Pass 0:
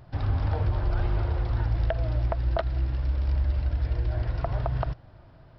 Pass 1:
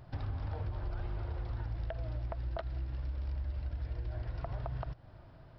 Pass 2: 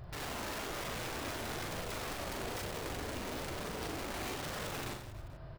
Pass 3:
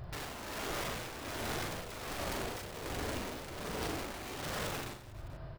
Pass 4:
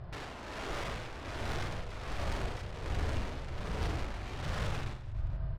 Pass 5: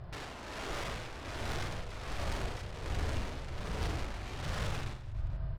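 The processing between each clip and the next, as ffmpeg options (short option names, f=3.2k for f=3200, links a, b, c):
-af "acompressor=threshold=-34dB:ratio=3,volume=-3dB"
-af "aeval=exprs='(mod(112*val(0)+1,2)-1)/112':c=same,flanger=delay=1.6:depth=1.8:regen=-56:speed=1.1:shape=triangular,aecho=1:1:40|96|174.4|284.2|437.8:0.631|0.398|0.251|0.158|0.1,volume=7.5dB"
-af "tremolo=f=1.3:d=0.59,volume=3dB"
-af "asubboost=boost=5:cutoff=130,adynamicsmooth=sensitivity=4.5:basefreq=4.6k"
-af "highshelf=f=4.3k:g=5,volume=-1dB"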